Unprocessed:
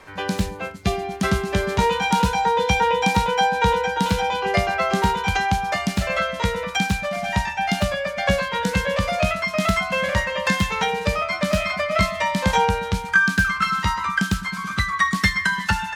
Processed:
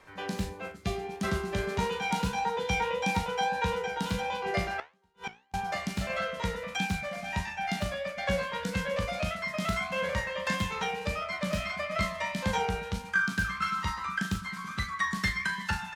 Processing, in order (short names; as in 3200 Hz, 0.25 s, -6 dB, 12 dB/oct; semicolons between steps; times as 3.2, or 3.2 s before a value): on a send: early reflections 25 ms -17.5 dB, 38 ms -9 dB; 4.78–5.54 on the sum: flipped gate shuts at -13 dBFS, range -41 dB; flange 1.6 Hz, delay 9.2 ms, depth 9.7 ms, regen +71%; gain -6 dB